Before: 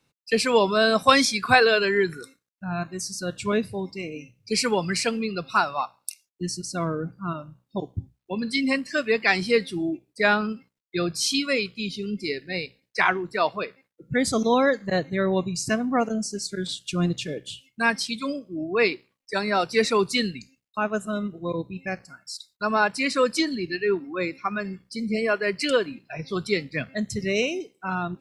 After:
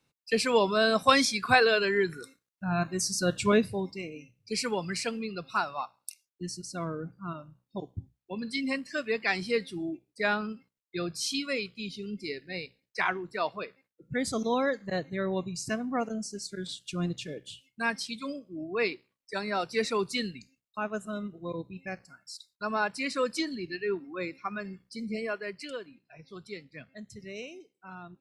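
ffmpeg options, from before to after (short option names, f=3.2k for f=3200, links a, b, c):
-af "volume=3dB,afade=t=in:st=2.13:d=1.13:silence=0.421697,afade=t=out:st=3.26:d=0.89:silence=0.298538,afade=t=out:st=25.04:d=0.68:silence=0.334965"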